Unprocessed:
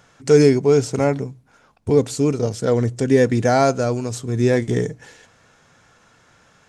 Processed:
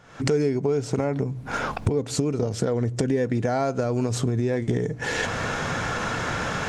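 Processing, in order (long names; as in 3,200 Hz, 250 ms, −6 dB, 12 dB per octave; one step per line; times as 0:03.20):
camcorder AGC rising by 72 dB per second
high-shelf EQ 4,400 Hz −10 dB
downward compressor 2.5 to 1, threshold −24 dBFS, peak gain reduction 11 dB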